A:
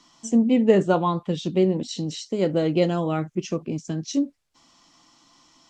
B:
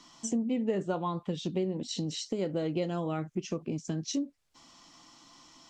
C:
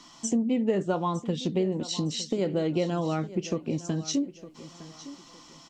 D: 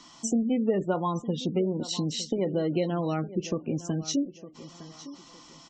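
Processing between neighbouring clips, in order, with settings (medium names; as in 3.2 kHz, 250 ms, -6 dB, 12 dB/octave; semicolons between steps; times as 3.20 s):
compression 3:1, threshold -33 dBFS, peak gain reduction 16 dB; trim +1 dB
feedback delay 909 ms, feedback 31%, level -16 dB; trim +4.5 dB
Chebyshev shaper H 4 -29 dB, 6 -21 dB, 8 -25 dB, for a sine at -14 dBFS; spectral gate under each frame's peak -30 dB strong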